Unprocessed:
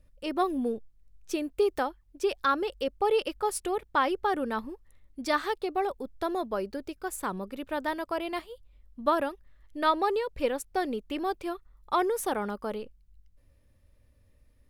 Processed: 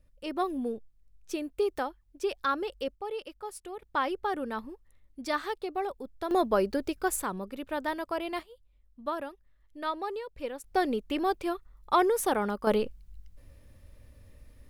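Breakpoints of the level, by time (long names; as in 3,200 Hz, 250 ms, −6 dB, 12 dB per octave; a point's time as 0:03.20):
−3 dB
from 0:02.95 −11 dB
from 0:03.82 −3.5 dB
from 0:06.31 +6 dB
from 0:07.23 −1 dB
from 0:08.43 −8 dB
from 0:10.64 +2.5 dB
from 0:12.67 +9.5 dB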